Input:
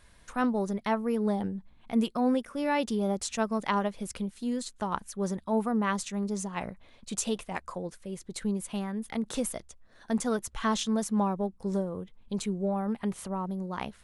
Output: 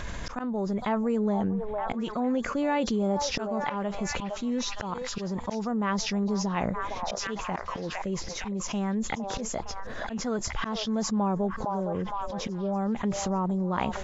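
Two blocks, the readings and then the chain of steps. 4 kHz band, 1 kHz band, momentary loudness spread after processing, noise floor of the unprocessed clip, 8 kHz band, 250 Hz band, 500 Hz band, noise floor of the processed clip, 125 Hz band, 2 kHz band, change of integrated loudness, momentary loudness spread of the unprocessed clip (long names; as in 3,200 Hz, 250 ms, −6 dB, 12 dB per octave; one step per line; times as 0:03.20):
+4.5 dB, +2.0 dB, 7 LU, −58 dBFS, +1.0 dB, +1.0 dB, +1.5 dB, −37 dBFS, +3.5 dB, +2.5 dB, +1.0 dB, 9 LU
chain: hearing-aid frequency compression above 3,300 Hz 1.5 to 1
high-shelf EQ 2,200 Hz −6.5 dB
volume swells 580 ms
echo through a band-pass that steps 460 ms, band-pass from 760 Hz, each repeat 0.7 octaves, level −9.5 dB
envelope flattener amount 70%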